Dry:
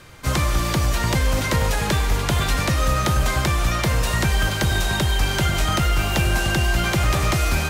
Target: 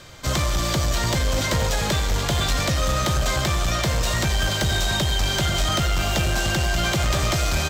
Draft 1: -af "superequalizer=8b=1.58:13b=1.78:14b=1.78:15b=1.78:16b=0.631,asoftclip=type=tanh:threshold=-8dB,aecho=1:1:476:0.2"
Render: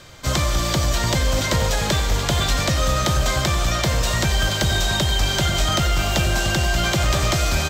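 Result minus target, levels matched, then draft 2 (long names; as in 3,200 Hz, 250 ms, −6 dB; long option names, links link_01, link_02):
soft clipping: distortion −12 dB
-af "superequalizer=8b=1.58:13b=1.78:14b=1.78:15b=1.78:16b=0.631,asoftclip=type=tanh:threshold=-16dB,aecho=1:1:476:0.2"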